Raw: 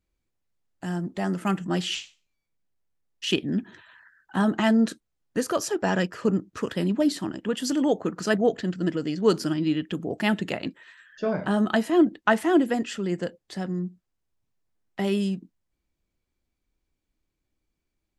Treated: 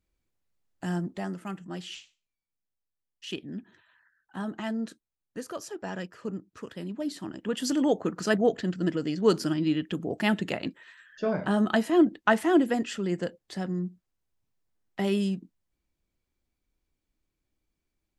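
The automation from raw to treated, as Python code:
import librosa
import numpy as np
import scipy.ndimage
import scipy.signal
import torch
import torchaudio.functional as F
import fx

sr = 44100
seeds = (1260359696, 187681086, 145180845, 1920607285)

y = fx.gain(x, sr, db=fx.line((0.98, -0.5), (1.47, -11.5), (6.95, -11.5), (7.61, -1.5)))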